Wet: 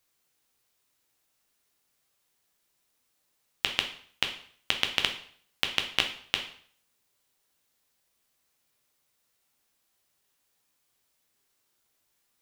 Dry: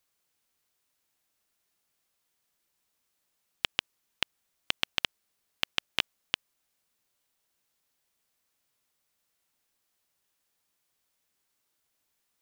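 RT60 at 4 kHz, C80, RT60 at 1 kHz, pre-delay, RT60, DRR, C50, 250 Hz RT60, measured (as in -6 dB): 0.50 s, 13.5 dB, 0.55 s, 4 ms, 0.55 s, 4.0 dB, 9.5 dB, 0.55 s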